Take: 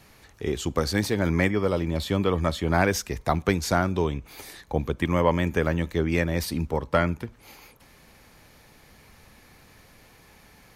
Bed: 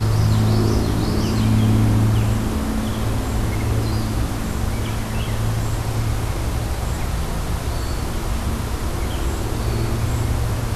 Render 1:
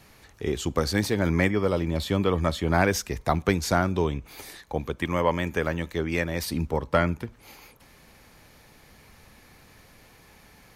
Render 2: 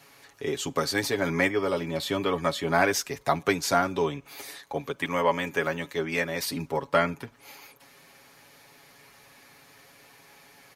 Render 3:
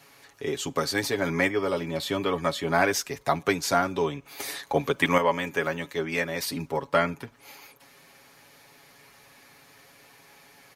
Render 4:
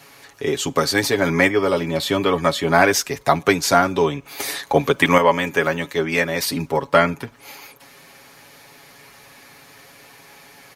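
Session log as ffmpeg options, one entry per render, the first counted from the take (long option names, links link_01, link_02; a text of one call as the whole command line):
ffmpeg -i in.wav -filter_complex "[0:a]asettb=1/sr,asplit=3[link_01][link_02][link_03];[link_01]atrim=end=4.574[link_04];[link_02]atrim=start=4.57:end=6.47,asetpts=PTS-STARTPTS,afade=type=in:duration=0.004:curve=qsin,afade=type=out:start_time=1.896:duration=0.004:curve=qsin,lowshelf=frequency=380:gain=-5.5[link_05];[link_03]atrim=start=6.466[link_06];[link_04][link_05]acrossfade=duration=0.004:curve1=hsin:curve2=qsin[link_07];[link_07][link_06]acrossfade=duration=0.004:curve1=qsin:curve2=hsin" out.wav
ffmpeg -i in.wav -af "highpass=frequency=390:poles=1,aecho=1:1:7.2:0.67" out.wav
ffmpeg -i in.wav -filter_complex "[0:a]asplit=3[link_01][link_02][link_03];[link_01]atrim=end=4.402[link_04];[link_02]atrim=start=4.398:end=5.182,asetpts=PTS-STARTPTS,volume=7dB[link_05];[link_03]atrim=start=5.178[link_06];[link_04][link_05]acrossfade=duration=0.004:curve1=hsin:curve2=hsin[link_07];[link_07][link_06]acrossfade=duration=0.004:curve1=hsin:curve2=hsin" out.wav
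ffmpeg -i in.wav -af "volume=8dB,alimiter=limit=-1dB:level=0:latency=1" out.wav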